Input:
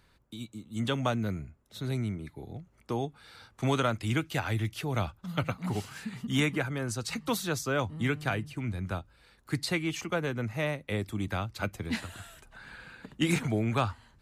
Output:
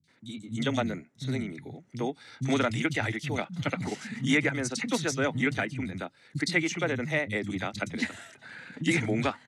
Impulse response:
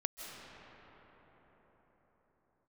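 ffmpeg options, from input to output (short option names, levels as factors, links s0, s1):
-filter_complex "[0:a]asoftclip=type=hard:threshold=0.119,highpass=f=120:w=0.5412,highpass=f=120:w=1.3066,equalizer=f=260:t=q:w=4:g=5,equalizer=f=1100:t=q:w=4:g=-7,equalizer=f=2000:t=q:w=4:g=9,equalizer=f=3700:t=q:w=4:g=4,equalizer=f=5900:t=q:w=4:g=5,lowpass=f=9500:w=0.5412,lowpass=f=9500:w=1.3066,acrossover=split=200|3400[s0][s1][s2];[s2]adelay=60[s3];[s1]adelay=100[s4];[s0][s4][s3]amix=inputs=3:normalize=0,atempo=1.5,volume=1.33"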